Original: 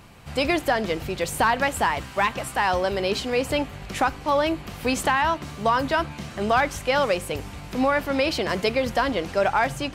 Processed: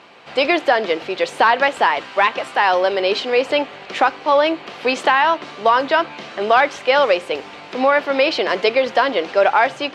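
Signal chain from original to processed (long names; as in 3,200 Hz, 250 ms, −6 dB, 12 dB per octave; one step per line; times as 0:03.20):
Chebyshev band-pass filter 410–3,800 Hz, order 2
level +7.5 dB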